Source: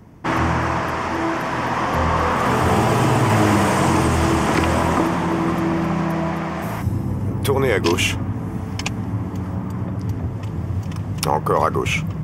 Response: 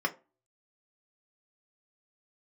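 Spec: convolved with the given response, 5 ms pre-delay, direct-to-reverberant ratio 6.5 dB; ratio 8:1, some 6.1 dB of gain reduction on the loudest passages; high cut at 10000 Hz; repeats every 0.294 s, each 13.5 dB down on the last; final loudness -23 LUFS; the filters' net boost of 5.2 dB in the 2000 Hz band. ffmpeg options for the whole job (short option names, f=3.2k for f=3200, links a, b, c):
-filter_complex "[0:a]lowpass=10k,equalizer=f=2k:t=o:g=6.5,acompressor=threshold=-18dB:ratio=8,aecho=1:1:294|588:0.211|0.0444,asplit=2[a][b];[1:a]atrim=start_sample=2205,adelay=5[c];[b][c]afir=irnorm=-1:irlink=0,volume=-14.5dB[d];[a][d]amix=inputs=2:normalize=0,volume=-1dB"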